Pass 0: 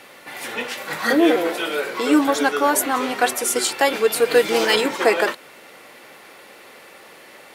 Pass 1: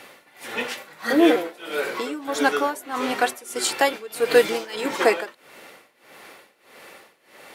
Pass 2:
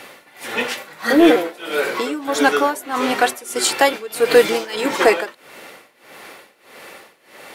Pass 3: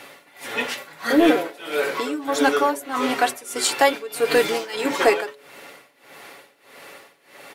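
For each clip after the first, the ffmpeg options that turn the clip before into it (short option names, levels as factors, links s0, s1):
-af "tremolo=f=1.6:d=0.9"
-af "acontrast=48"
-af "aecho=1:1:7.1:0.43,bandreject=f=141.3:t=h:w=4,bandreject=f=282.6:t=h:w=4,bandreject=f=423.9:t=h:w=4,bandreject=f=565.2:t=h:w=4,volume=0.631"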